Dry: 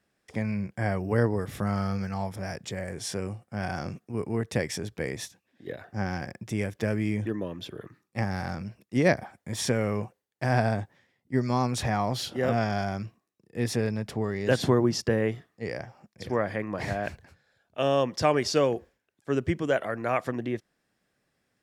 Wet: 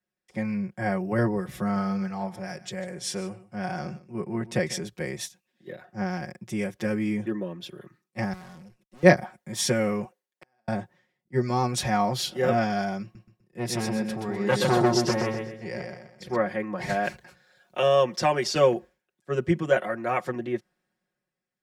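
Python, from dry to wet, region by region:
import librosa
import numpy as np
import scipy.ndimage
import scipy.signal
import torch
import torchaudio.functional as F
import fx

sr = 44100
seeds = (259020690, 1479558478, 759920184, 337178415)

y = fx.chain(x, sr, fx.highpass(hz=51.0, slope=12),
    fx.high_shelf(hz=12000.0, db=-8.0),
    fx.echo_single(ms=148, db=-16.5), at=(1.59, 4.84))
y = fx.chain(y, sr, fx.cvsd(bps=64000),
    fx.highpass(hz=75.0, slope=24),
    fx.tube_stage(drive_db=41.0, bias=0.75), at=(8.33, 9.03))
y = fx.chain(y, sr, fx.highpass(hz=280.0, slope=12),
    fx.gate_flip(shuts_db=-27.0, range_db=-39), at=(10.04, 10.68))
y = fx.chain(y, sr, fx.echo_feedback(ms=126, feedback_pct=44, wet_db=-3.5),
    fx.transformer_sat(knee_hz=880.0), at=(13.02, 16.36))
y = fx.chain(y, sr, fx.low_shelf(hz=340.0, db=-4.0),
    fx.band_squash(depth_pct=70), at=(16.89, 18.55))
y = y + 0.89 * np.pad(y, (int(5.5 * sr / 1000.0), 0))[:len(y)]
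y = fx.band_widen(y, sr, depth_pct=40)
y = F.gain(torch.from_numpy(y), -1.0).numpy()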